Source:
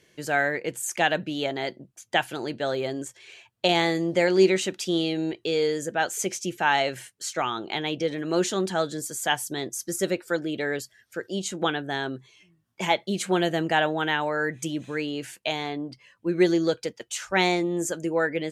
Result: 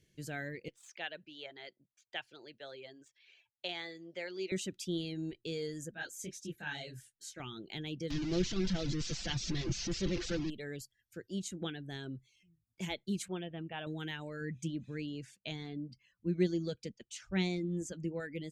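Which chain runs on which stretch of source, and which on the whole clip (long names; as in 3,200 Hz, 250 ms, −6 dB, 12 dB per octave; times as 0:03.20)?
0:00.68–0:04.52: running median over 3 samples + three-way crossover with the lows and the highs turned down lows −22 dB, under 470 Hz, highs −23 dB, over 4,900 Hz
0:05.91–0:07.40: hollow resonant body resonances 1,600/3,800 Hz, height 10 dB, ringing for 20 ms + micro pitch shift up and down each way 59 cents
0:08.10–0:10.50: linear delta modulator 32 kbit/s, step −20 dBFS + comb filter 5.9 ms, depth 48%
0:13.28–0:13.87: Chebyshev low-pass with heavy ripple 3,600 Hz, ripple 6 dB + dynamic equaliser 1,100 Hz, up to +4 dB, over −37 dBFS, Q 1.5
0:14.41–0:18.20: low-pass filter 6,500 Hz + parametric band 200 Hz +6 dB 0.62 octaves
whole clip: reverb reduction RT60 0.54 s; guitar amp tone stack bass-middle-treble 10-0-1; level +10 dB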